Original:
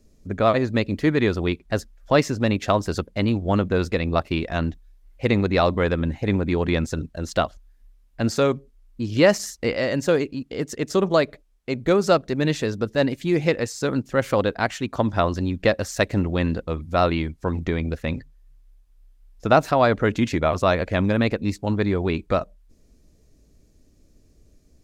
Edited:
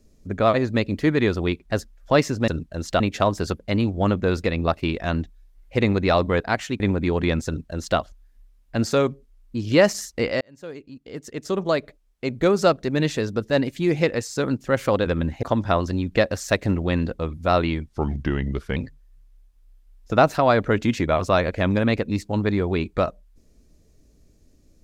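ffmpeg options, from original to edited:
ffmpeg -i in.wav -filter_complex "[0:a]asplit=10[link_01][link_02][link_03][link_04][link_05][link_06][link_07][link_08][link_09][link_10];[link_01]atrim=end=2.482[link_11];[link_02]atrim=start=6.908:end=7.432[link_12];[link_03]atrim=start=2.478:end=5.882[link_13];[link_04]atrim=start=14.508:end=14.912[link_14];[link_05]atrim=start=6.248:end=9.86,asetpts=PTS-STARTPTS,afade=type=out:start_time=3.608:duration=0.004:curve=hsin[link_15];[link_06]atrim=start=9.86:end=14.512,asetpts=PTS-STARTPTS,afade=type=in:duration=1.88[link_16];[link_07]atrim=start=5.878:end=6.252[link_17];[link_08]atrim=start=14.908:end=17.344[link_18];[link_09]atrim=start=17.34:end=18.1,asetpts=PTS-STARTPTS,asetrate=37044,aresample=44100[link_19];[link_10]atrim=start=18.096[link_20];[link_11][link_12]acrossfade=duration=0.004:curve1=hsin:curve2=hsin[link_21];[link_21][link_13]acrossfade=duration=0.004:curve1=hsin:curve2=hsin[link_22];[link_22][link_14]acrossfade=duration=0.004:curve1=hsin:curve2=hsin[link_23];[link_15][link_16]concat=n=2:v=0:a=1[link_24];[link_23][link_24]acrossfade=duration=0.004:curve1=hsin:curve2=hsin[link_25];[link_25][link_17]acrossfade=duration=0.004:curve1=hsin:curve2=hsin[link_26];[link_26][link_18]acrossfade=duration=0.004:curve1=hsin:curve2=hsin[link_27];[link_27][link_19]acrossfade=duration=0.004:curve1=hsin:curve2=hsin[link_28];[link_28][link_20]acrossfade=duration=0.004:curve1=hsin:curve2=hsin" out.wav

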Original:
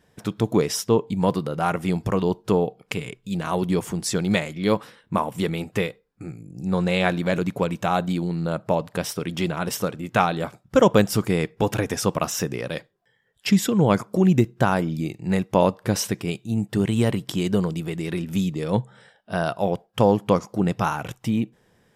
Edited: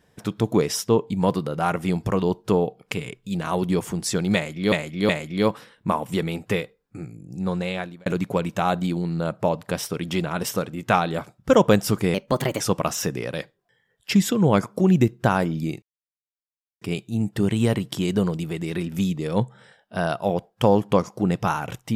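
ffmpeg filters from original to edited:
ffmpeg -i in.wav -filter_complex "[0:a]asplit=8[link_01][link_02][link_03][link_04][link_05][link_06][link_07][link_08];[link_01]atrim=end=4.722[link_09];[link_02]atrim=start=4.348:end=4.722[link_10];[link_03]atrim=start=4.348:end=7.32,asetpts=PTS-STARTPTS,afade=type=out:start_time=1.882:duration=1.09:curve=qsin[link_11];[link_04]atrim=start=7.32:end=11.404,asetpts=PTS-STARTPTS,afade=type=in:duration=0.004:curve=hsin[link_12];[link_05]atrim=start=11.4:end=11.97,asetpts=PTS-STARTPTS,asetrate=54243,aresample=44100[link_13];[link_06]atrim=start=11.966:end=15.19,asetpts=PTS-STARTPTS,afade=type=out:start_time=3.22:duration=0.004:curve=hsin[link_14];[link_07]atrim=start=15.19:end=16.18,asetpts=PTS-STARTPTS,volume=0[link_15];[link_08]atrim=start=16.18,asetpts=PTS-STARTPTS,afade=type=in:duration=0.004:curve=hsin[link_16];[link_09][link_10]acrossfade=duration=0.004:curve1=hsin:curve2=hsin[link_17];[link_11][link_12]concat=n=2:v=0:a=1[link_18];[link_17][link_18]acrossfade=duration=0.004:curve1=hsin:curve2=hsin[link_19];[link_19][link_13]acrossfade=duration=0.004:curve1=hsin:curve2=hsin[link_20];[link_14][link_15][link_16]concat=n=3:v=0:a=1[link_21];[link_20][link_21]acrossfade=duration=0.004:curve1=hsin:curve2=hsin" out.wav

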